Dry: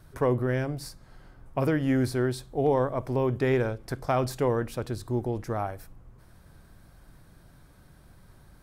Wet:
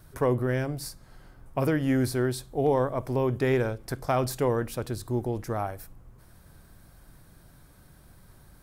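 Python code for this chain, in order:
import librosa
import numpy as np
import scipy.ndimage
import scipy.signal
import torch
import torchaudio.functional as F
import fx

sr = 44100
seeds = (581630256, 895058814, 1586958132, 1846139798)

y = fx.high_shelf(x, sr, hz=8000.0, db=8.5)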